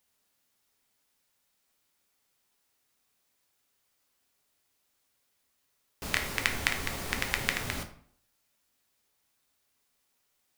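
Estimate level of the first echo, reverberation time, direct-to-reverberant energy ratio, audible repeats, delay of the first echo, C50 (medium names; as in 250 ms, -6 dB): no echo, 0.60 s, 4.5 dB, no echo, no echo, 10.5 dB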